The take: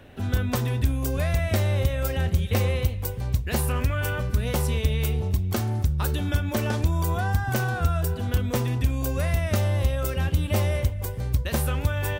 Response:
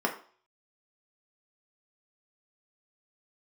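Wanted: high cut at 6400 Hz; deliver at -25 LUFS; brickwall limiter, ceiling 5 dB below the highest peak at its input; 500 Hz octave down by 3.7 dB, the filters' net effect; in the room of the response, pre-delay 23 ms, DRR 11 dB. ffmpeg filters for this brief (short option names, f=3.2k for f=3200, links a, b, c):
-filter_complex "[0:a]lowpass=6.4k,equalizer=f=500:t=o:g=-4.5,alimiter=limit=-17.5dB:level=0:latency=1,asplit=2[a][b];[1:a]atrim=start_sample=2205,adelay=23[c];[b][c]afir=irnorm=-1:irlink=0,volume=-21dB[d];[a][d]amix=inputs=2:normalize=0,volume=2dB"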